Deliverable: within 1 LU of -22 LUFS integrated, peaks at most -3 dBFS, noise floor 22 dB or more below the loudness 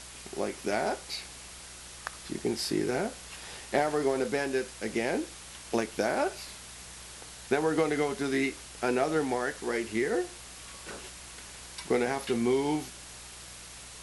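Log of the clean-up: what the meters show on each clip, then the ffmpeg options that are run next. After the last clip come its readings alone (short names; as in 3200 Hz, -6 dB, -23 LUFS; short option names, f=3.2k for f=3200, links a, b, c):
hum 60 Hz; harmonics up to 180 Hz; hum level -54 dBFS; noise floor -47 dBFS; noise floor target -53 dBFS; loudness -31.0 LUFS; peak -13.5 dBFS; loudness target -22.0 LUFS
-> -af "bandreject=f=60:t=h:w=4,bandreject=f=120:t=h:w=4,bandreject=f=180:t=h:w=4"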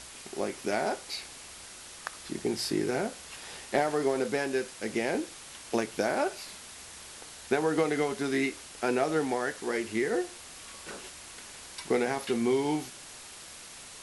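hum none; noise floor -47 dBFS; noise floor target -53 dBFS
-> -af "afftdn=nr=6:nf=-47"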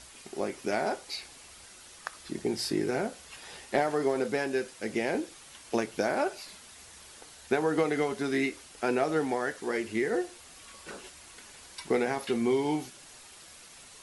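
noise floor -51 dBFS; noise floor target -53 dBFS
-> -af "afftdn=nr=6:nf=-51"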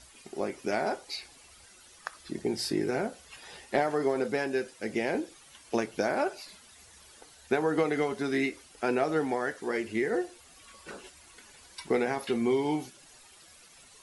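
noise floor -56 dBFS; loudness -30.5 LUFS; peak -13.5 dBFS; loudness target -22.0 LUFS
-> -af "volume=8.5dB"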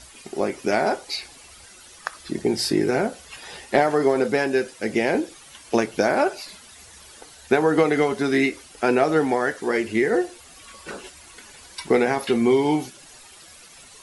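loudness -22.0 LUFS; peak -5.0 dBFS; noise floor -47 dBFS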